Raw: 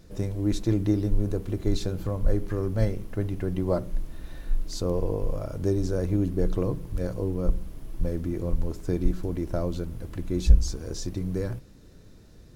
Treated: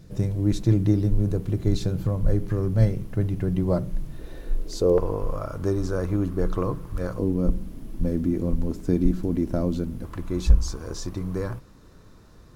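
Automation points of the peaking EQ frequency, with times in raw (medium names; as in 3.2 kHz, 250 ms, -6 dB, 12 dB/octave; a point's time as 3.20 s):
peaking EQ +12 dB 0.81 oct
140 Hz
from 4.19 s 430 Hz
from 4.98 s 1.2 kHz
from 7.19 s 230 Hz
from 10.04 s 1.1 kHz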